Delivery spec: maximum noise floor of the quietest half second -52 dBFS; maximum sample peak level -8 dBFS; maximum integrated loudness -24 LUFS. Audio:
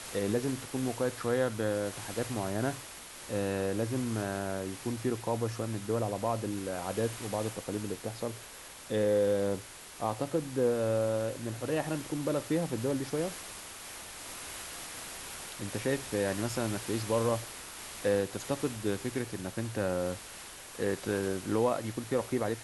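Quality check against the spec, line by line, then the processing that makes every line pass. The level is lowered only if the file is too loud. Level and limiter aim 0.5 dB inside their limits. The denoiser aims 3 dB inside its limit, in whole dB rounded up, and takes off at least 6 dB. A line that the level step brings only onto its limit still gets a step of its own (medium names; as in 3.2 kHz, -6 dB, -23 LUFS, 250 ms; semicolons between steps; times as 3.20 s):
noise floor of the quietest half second -48 dBFS: fail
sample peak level -15.5 dBFS: pass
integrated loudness -33.0 LUFS: pass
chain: noise reduction 7 dB, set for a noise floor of -48 dBFS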